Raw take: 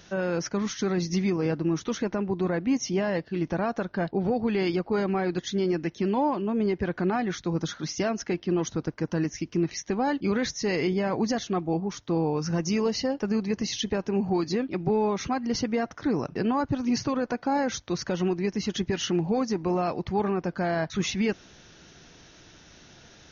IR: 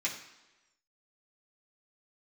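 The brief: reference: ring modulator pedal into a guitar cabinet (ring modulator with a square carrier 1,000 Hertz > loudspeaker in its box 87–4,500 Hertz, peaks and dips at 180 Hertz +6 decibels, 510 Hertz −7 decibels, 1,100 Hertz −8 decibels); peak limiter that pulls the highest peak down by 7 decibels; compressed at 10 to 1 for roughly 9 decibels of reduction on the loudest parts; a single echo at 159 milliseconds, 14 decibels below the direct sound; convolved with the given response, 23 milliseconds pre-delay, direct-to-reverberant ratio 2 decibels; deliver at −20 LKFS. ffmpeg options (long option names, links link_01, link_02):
-filter_complex "[0:a]acompressor=threshold=-30dB:ratio=10,alimiter=level_in=4dB:limit=-24dB:level=0:latency=1,volume=-4dB,aecho=1:1:159:0.2,asplit=2[link_01][link_02];[1:a]atrim=start_sample=2205,adelay=23[link_03];[link_02][link_03]afir=irnorm=-1:irlink=0,volume=-7dB[link_04];[link_01][link_04]amix=inputs=2:normalize=0,aeval=exprs='val(0)*sgn(sin(2*PI*1000*n/s))':channel_layout=same,highpass=87,equalizer=frequency=180:width_type=q:width=4:gain=6,equalizer=frequency=510:width_type=q:width=4:gain=-7,equalizer=frequency=1100:width_type=q:width=4:gain=-8,lowpass=frequency=4500:width=0.5412,lowpass=frequency=4500:width=1.3066,volume=16.5dB"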